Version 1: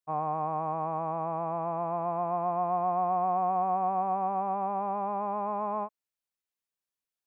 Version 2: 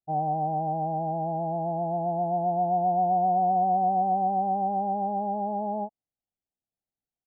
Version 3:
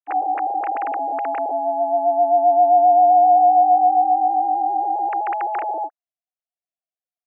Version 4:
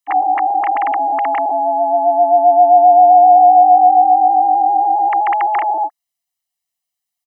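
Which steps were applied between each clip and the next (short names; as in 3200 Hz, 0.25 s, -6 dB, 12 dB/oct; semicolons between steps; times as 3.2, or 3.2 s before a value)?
steep low-pass 820 Hz 96 dB/oct; comb 1 ms, depth 42%; gain +5 dB
sine-wave speech; gain +9 dB
high shelf 2200 Hz +11 dB; comb 1 ms, depth 69%; gain +3.5 dB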